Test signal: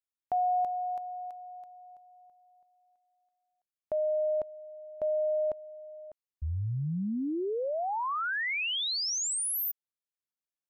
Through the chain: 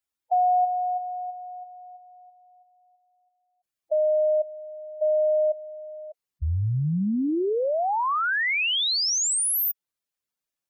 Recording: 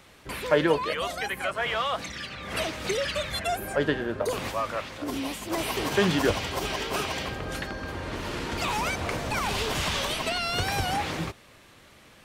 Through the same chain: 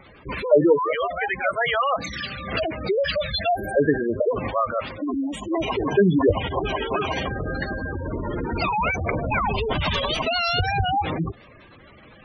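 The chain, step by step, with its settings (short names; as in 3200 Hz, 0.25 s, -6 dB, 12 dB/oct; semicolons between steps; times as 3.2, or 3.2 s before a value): spectral gate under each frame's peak -10 dB strong; gain +7.5 dB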